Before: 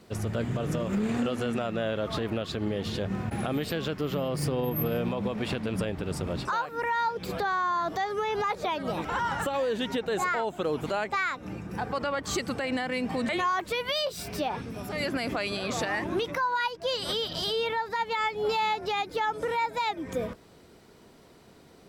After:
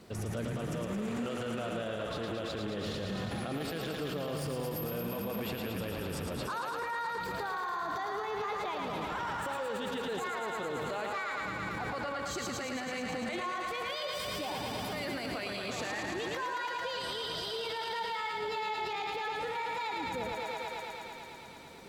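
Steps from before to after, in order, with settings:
on a send: feedback echo with a high-pass in the loop 111 ms, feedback 85%, high-pass 270 Hz, level −4.5 dB
on the sum: brickwall limiter −28 dBFS, peak gain reduction 14 dB

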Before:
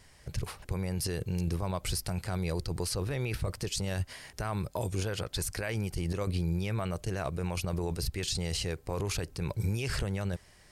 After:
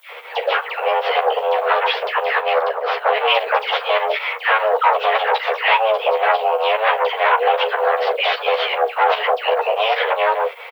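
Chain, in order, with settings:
stylus tracing distortion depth 0.03 ms
in parallel at −1 dB: brickwall limiter −29.5 dBFS, peak gain reduction 7 dB
on the sum: all-pass dispersion lows, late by 100 ms, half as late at 1,300 Hz
sine wavefolder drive 13 dB, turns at −14.5 dBFS
bit-depth reduction 8 bits, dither triangular
fake sidechain pumping 151 BPM, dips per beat 2, −17 dB, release 109 ms
on a send: ambience of single reflections 13 ms −3.5 dB, 41 ms −15 dB
on the sum: single-sideband voice off tune +330 Hz 150–3,000 Hz
background noise violet −62 dBFS
0:02.41–0:03.47: multiband upward and downward expander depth 70%
level +4 dB

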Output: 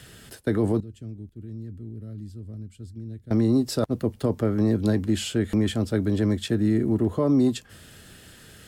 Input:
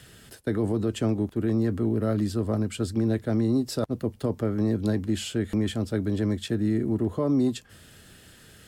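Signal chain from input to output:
0:00.80–0:03.31: guitar amp tone stack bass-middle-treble 10-0-1
level +3 dB

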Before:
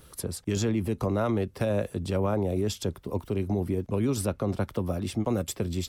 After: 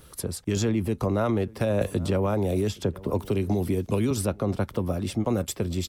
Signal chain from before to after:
slap from a distant wall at 140 metres, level −24 dB
0:01.81–0:04.11: multiband upward and downward compressor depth 100%
level +2 dB

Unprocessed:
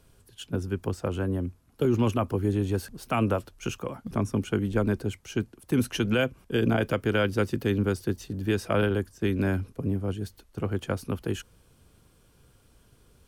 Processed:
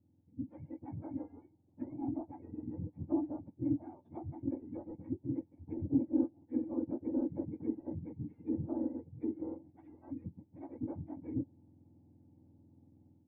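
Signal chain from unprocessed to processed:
frequency axis turned over on the octave scale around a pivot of 890 Hz
automatic gain control gain up to 9 dB
soft clipping −16.5 dBFS, distortion −13 dB
treble cut that deepens with the level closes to 800 Hz, closed at −21 dBFS
formant resonators in series u
high-frequency loss of the air 260 metres

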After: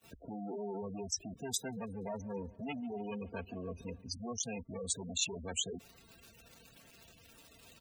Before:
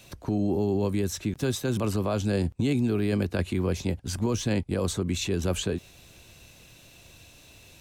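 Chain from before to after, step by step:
adaptive Wiener filter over 41 samples
tube saturation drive 34 dB, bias 0.25
low-shelf EQ 120 Hz +3 dB
bit-depth reduction 10 bits, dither none
noise gate −58 dBFS, range −21 dB
spectral tilt +3.5 dB per octave
comb filter 4.4 ms, depth 37%
gate on every frequency bin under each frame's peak −10 dB strong
0:01.58–0:04.09: feedback echo with a swinging delay time 144 ms, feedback 72%, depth 84 cents, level −22 dB
level +2 dB

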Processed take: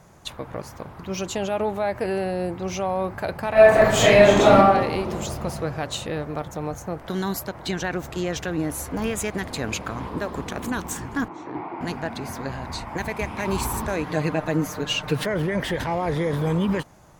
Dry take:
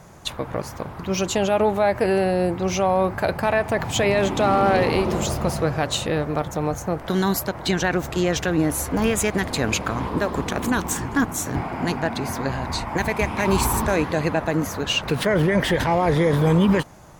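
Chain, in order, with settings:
0:03.52–0:04.56: thrown reverb, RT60 0.85 s, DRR −11 dB
0:11.28–0:11.81: loudspeaker in its box 230–3,300 Hz, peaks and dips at 230 Hz −8 dB, 330 Hz +10 dB, 580 Hz −4 dB, 940 Hz +6 dB, 1,600 Hz −7 dB, 3,000 Hz −6 dB
0:14.06–0:15.26: comb filter 6.6 ms, depth 94%
level −5.5 dB

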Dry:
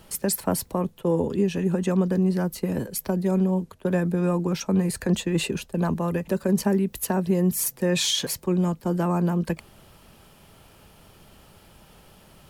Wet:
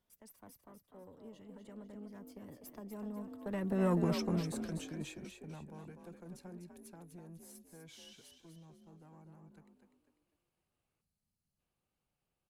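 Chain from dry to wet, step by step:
one-sided soft clipper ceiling −18.5 dBFS
source passing by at 0:03.95, 35 m/s, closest 6.1 metres
echo with shifted repeats 248 ms, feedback 36%, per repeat +47 Hz, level −7 dB
gain on a spectral selection 0:11.01–0:11.59, 270–3,900 Hz −11 dB
level −4.5 dB

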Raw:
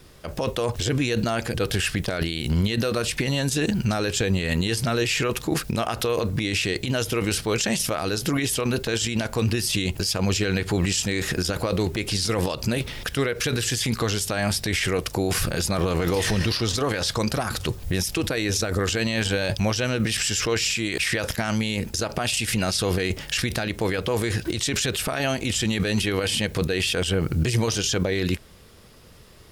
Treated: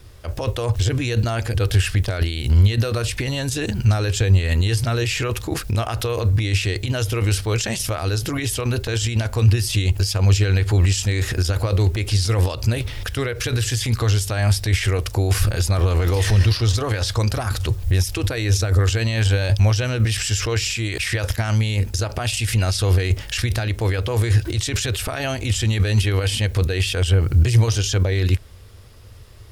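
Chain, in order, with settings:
low shelf with overshoot 130 Hz +7 dB, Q 3

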